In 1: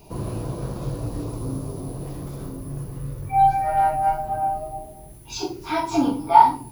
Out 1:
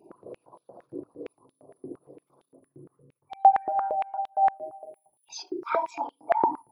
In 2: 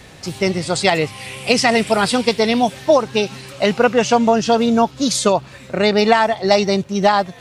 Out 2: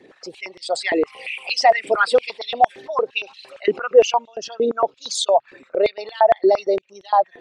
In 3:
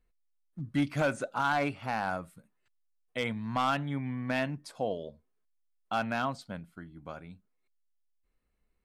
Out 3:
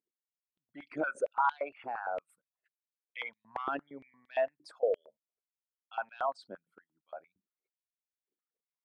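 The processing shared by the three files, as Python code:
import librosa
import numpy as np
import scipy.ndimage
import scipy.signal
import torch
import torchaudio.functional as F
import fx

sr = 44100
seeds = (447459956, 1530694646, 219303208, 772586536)

y = fx.envelope_sharpen(x, sr, power=2.0)
y = fx.filter_held_highpass(y, sr, hz=8.7, low_hz=350.0, high_hz=3400.0)
y = y * 10.0 ** (-6.5 / 20.0)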